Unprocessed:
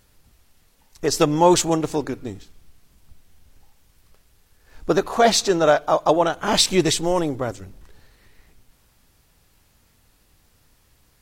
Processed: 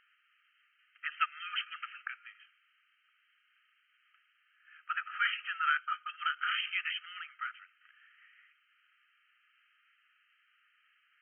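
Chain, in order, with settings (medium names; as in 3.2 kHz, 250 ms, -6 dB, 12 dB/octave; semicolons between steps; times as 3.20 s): dynamic bell 1.8 kHz, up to -4 dB, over -30 dBFS, Q 0.92; brick-wall FIR band-pass 1.2–3.2 kHz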